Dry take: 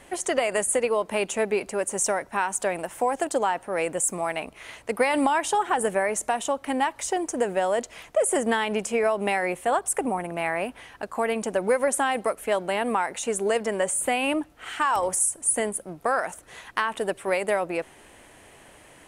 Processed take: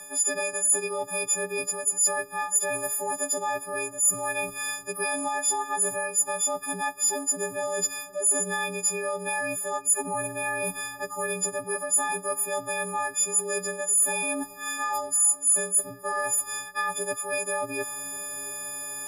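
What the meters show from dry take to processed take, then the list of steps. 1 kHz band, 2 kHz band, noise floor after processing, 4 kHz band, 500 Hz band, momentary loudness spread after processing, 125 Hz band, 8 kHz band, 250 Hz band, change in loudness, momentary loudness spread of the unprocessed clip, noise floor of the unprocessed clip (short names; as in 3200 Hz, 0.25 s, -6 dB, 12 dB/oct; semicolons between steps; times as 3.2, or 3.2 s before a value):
-5.0 dB, -1.5 dB, -43 dBFS, -2.5 dB, -7.0 dB, 9 LU, -2.5 dB, +6.5 dB, -9.0 dB, 0.0 dB, 7 LU, -52 dBFS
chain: frequency quantiser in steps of 6 st; bell 3300 Hz -8 dB 1.3 oct; reverse; compressor 5:1, threshold -32 dBFS, peak gain reduction 21.5 dB; reverse; frequency shift -34 Hz; tilt +1.5 dB/oct; on a send: darkening echo 0.346 s, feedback 65%, low-pass 1600 Hz, level -17 dB; on the sum: gain +4.5 dB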